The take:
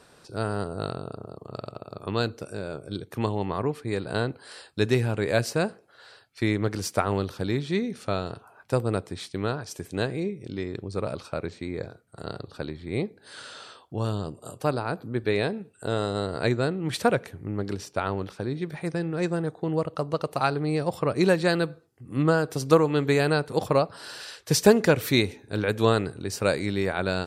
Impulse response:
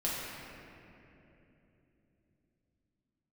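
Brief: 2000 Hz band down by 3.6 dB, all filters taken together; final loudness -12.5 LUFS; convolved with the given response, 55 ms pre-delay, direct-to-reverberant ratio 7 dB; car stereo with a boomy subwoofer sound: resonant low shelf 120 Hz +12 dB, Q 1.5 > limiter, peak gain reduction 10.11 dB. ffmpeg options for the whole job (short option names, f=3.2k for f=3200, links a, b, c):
-filter_complex "[0:a]equalizer=f=2k:t=o:g=-5,asplit=2[a][b];[1:a]atrim=start_sample=2205,adelay=55[c];[b][c]afir=irnorm=-1:irlink=0,volume=-13.5dB[d];[a][d]amix=inputs=2:normalize=0,lowshelf=f=120:t=q:w=1.5:g=12,volume=15dB,alimiter=limit=-1.5dB:level=0:latency=1"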